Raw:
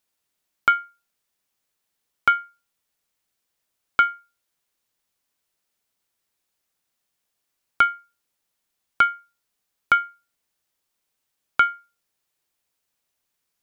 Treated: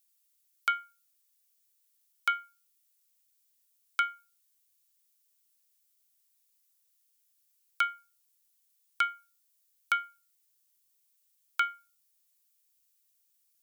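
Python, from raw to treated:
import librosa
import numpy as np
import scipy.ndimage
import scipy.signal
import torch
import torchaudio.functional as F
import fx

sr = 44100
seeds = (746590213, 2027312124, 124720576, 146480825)

y = np.diff(x, prepend=0.0)
y = F.gain(torch.from_numpy(y), 3.0).numpy()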